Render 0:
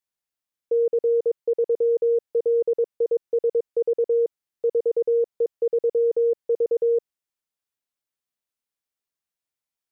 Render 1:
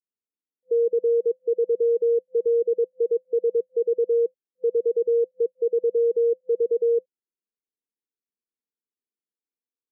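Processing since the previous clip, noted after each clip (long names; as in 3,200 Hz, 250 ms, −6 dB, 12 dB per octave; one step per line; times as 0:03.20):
brick-wall band-pass 190–510 Hz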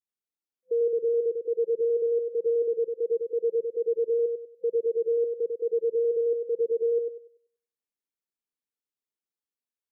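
feedback echo with a high-pass in the loop 96 ms, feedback 33%, high-pass 230 Hz, level −4 dB
level −4.5 dB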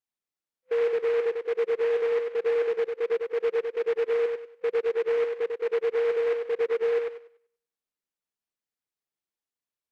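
short delay modulated by noise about 1,400 Hz, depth 0.053 ms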